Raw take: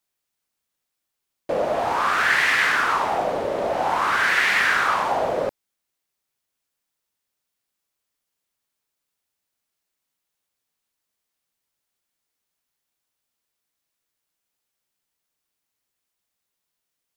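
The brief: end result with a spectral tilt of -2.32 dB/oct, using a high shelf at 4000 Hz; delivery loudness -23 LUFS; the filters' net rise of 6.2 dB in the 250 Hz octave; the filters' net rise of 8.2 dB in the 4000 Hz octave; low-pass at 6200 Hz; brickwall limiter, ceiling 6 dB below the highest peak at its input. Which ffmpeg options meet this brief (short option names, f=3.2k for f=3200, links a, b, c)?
-af "lowpass=6.2k,equalizer=f=250:t=o:g=8,highshelf=f=4k:g=8.5,equalizer=f=4k:t=o:g=6.5,volume=-3.5dB,alimiter=limit=-13.5dB:level=0:latency=1"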